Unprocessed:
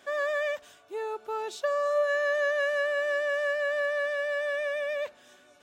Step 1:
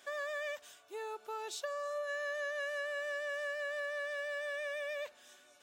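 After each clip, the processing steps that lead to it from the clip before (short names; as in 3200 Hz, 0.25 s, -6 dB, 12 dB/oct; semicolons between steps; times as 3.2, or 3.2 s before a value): low shelf 340 Hz -8.5 dB; compressor 2.5:1, threshold -34 dBFS, peak gain reduction 7 dB; high shelf 3800 Hz +7.5 dB; gain -5 dB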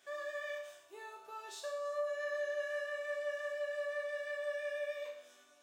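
resonator bank C2 major, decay 0.72 s; gain +11 dB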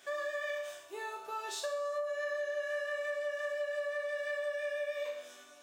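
compressor, threshold -42 dBFS, peak gain reduction 9 dB; gain +8.5 dB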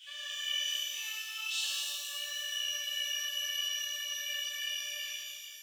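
ending faded out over 0.92 s; resonant high-pass 3000 Hz, resonance Q 11; shimmer reverb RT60 2.2 s, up +12 st, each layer -8 dB, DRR -8 dB; gain -5 dB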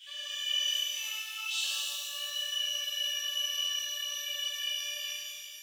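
shoebox room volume 2700 m³, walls furnished, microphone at 2.2 m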